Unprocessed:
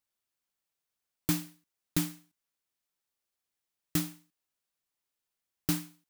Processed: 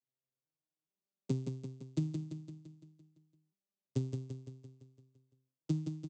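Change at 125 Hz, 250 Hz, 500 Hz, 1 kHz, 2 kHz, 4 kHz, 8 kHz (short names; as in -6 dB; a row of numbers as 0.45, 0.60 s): +2.0 dB, -4.0 dB, +3.0 dB, under -10 dB, under -20 dB, -17.0 dB, -20.5 dB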